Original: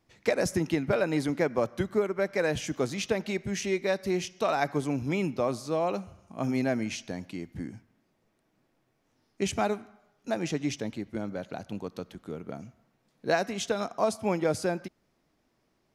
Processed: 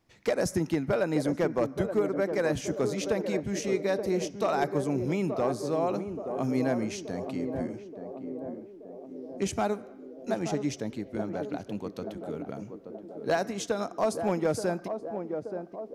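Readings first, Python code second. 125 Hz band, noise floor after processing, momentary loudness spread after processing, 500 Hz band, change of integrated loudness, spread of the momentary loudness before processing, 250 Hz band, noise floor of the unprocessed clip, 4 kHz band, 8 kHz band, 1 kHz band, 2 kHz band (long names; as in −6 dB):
0.0 dB, −48 dBFS, 12 LU, +1.0 dB, 0.0 dB, 12 LU, +1.0 dB, −73 dBFS, −3.5 dB, −1.0 dB, 0.0 dB, −3.0 dB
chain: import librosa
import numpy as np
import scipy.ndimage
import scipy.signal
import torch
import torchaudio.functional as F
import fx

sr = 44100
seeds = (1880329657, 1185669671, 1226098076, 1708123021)

y = fx.dynamic_eq(x, sr, hz=2800.0, q=1.1, threshold_db=-49.0, ratio=4.0, max_db=-6)
y = np.clip(y, -10.0 ** (-18.5 / 20.0), 10.0 ** (-18.5 / 20.0))
y = fx.echo_banded(y, sr, ms=877, feedback_pct=69, hz=410.0, wet_db=-6.0)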